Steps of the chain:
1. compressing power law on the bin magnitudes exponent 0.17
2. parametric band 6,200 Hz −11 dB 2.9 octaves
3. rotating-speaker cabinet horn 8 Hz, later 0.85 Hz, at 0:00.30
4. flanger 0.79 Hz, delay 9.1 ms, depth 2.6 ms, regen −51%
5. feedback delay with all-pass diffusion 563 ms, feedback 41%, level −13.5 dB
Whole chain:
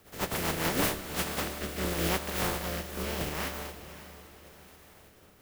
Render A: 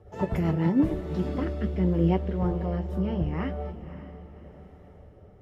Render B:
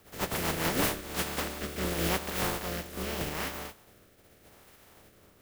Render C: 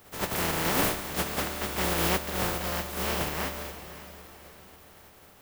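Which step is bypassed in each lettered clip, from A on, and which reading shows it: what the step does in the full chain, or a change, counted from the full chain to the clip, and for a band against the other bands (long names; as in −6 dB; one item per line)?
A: 1, 4 kHz band −19.0 dB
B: 5, echo-to-direct ratio −12.5 dB to none audible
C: 3, change in integrated loudness +3.0 LU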